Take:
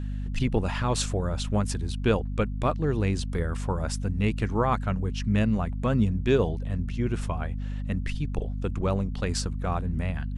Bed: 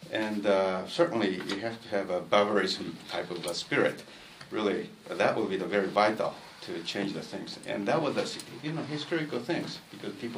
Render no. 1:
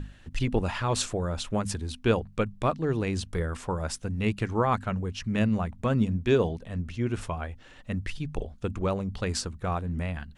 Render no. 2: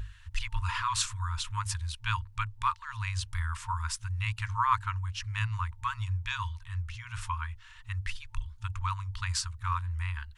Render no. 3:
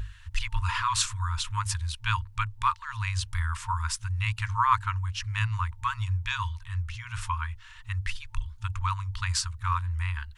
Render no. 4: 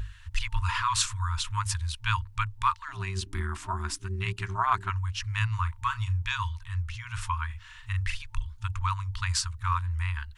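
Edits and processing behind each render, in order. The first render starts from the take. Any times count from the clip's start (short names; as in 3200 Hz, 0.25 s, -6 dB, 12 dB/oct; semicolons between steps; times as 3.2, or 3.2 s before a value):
notches 50/100/150/200/250 Hz
dynamic EQ 1000 Hz, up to +4 dB, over -45 dBFS, Q 2.3; FFT band-reject 110–900 Hz
gain +3.5 dB
2.88–4.9 AM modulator 290 Hz, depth 45%; 5.49–6.22 doubler 35 ms -12 dB; 7.46–8.22 doubler 41 ms -5 dB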